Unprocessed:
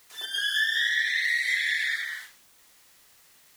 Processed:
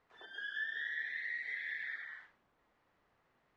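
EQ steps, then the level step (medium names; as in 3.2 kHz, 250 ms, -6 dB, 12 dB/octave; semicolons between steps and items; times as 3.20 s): low-pass 1.2 kHz 12 dB/octave; -5.5 dB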